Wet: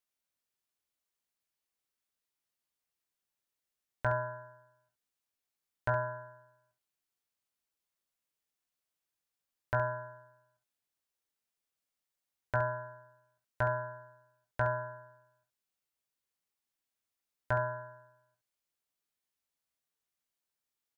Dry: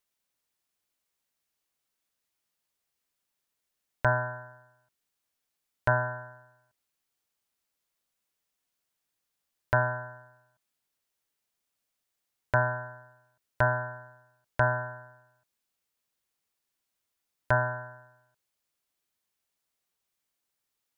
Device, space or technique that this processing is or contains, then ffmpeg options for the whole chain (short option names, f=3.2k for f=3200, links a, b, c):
slapback doubling: -filter_complex "[0:a]asplit=3[a][b][c];[b]adelay=18,volume=-8.5dB[d];[c]adelay=68,volume=-10dB[e];[a][d][e]amix=inputs=3:normalize=0,volume=-7.5dB"